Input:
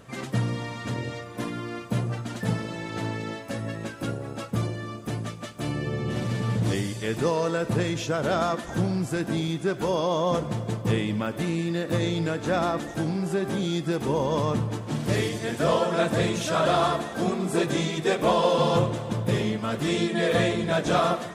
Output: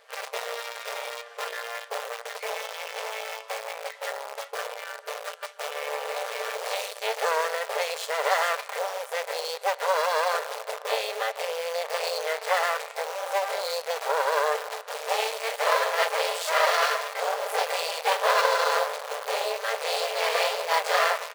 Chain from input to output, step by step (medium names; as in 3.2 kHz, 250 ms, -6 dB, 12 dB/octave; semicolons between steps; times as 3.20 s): treble shelf 7.8 kHz -12 dB; comb 5 ms, depth 66%; half-wave rectifier; formant shift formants +4 st; in parallel at -4 dB: bit crusher 5-bit; on the sum: brick-wall FIR high-pass 430 Hz